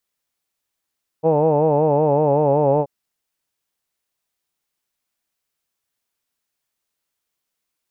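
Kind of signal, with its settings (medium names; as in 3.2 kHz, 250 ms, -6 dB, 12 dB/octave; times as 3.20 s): formant vowel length 1.63 s, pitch 155 Hz, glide -1.5 st, F1 520 Hz, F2 870 Hz, F3 2.6 kHz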